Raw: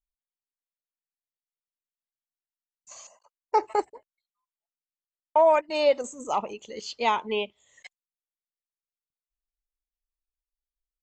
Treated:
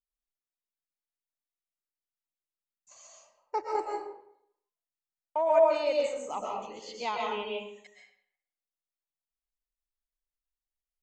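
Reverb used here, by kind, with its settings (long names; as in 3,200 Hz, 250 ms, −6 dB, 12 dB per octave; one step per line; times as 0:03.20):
comb and all-pass reverb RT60 0.7 s, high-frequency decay 0.75×, pre-delay 90 ms, DRR −2 dB
level −9.5 dB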